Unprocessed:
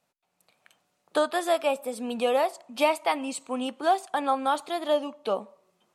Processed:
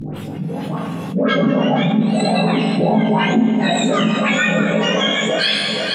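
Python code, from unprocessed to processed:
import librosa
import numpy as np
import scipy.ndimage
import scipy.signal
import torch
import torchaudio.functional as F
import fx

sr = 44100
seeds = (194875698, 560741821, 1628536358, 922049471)

y = fx.octave_mirror(x, sr, pivot_hz=1400.0)
y = fx.low_shelf(y, sr, hz=450.0, db=10.0)
y = fx.dispersion(y, sr, late='highs', ms=146.0, hz=1100.0)
y = fx.env_lowpass_down(y, sr, base_hz=830.0, full_db=-22.0)
y = fx.chorus_voices(y, sr, voices=6, hz=0.57, base_ms=18, depth_ms=4.1, mix_pct=60)
y = fx.doubler(y, sr, ms=19.0, db=-4)
y = fx.echo_feedback(y, sr, ms=472, feedback_pct=46, wet_db=-13)
y = fx.rev_schroeder(y, sr, rt60_s=1.3, comb_ms=32, drr_db=5.5)
y = fx.env_flatten(y, sr, amount_pct=70)
y = F.gain(torch.from_numpy(y), 6.5).numpy()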